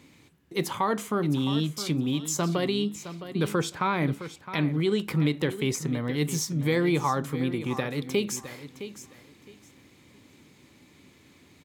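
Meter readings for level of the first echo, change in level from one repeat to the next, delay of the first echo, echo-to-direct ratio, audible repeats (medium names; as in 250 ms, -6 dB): -12.5 dB, -13.5 dB, 663 ms, -12.5 dB, 2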